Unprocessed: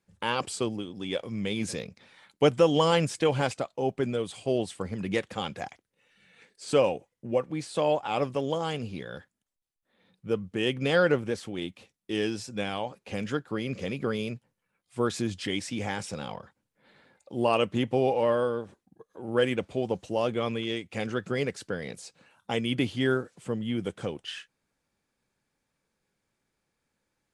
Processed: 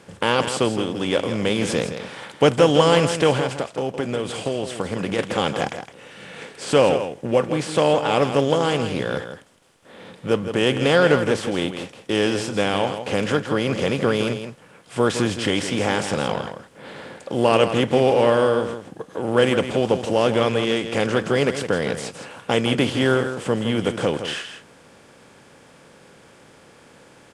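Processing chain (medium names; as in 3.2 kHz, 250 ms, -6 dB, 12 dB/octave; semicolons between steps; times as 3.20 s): spectral levelling over time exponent 0.6; 3.35–5.19 s: compression, threshold -25 dBFS, peak gain reduction 9 dB; delay 163 ms -9.5 dB; trim +4 dB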